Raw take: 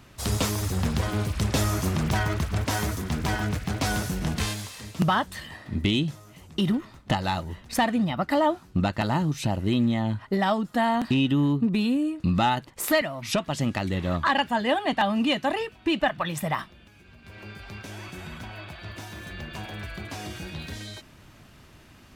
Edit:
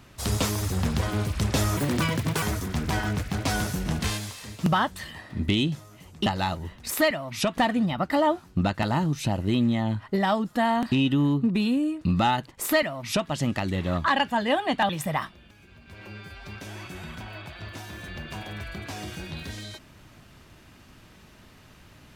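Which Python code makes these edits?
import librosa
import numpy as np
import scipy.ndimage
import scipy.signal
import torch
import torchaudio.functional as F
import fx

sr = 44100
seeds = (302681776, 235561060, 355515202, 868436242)

y = fx.edit(x, sr, fx.speed_span(start_s=1.77, length_s=1.01, speed=1.55),
    fx.cut(start_s=6.62, length_s=0.5),
    fx.duplicate(start_s=12.82, length_s=0.67, to_s=7.77),
    fx.cut(start_s=15.08, length_s=1.18),
    fx.stretch_span(start_s=17.43, length_s=0.28, factor=1.5), tone=tone)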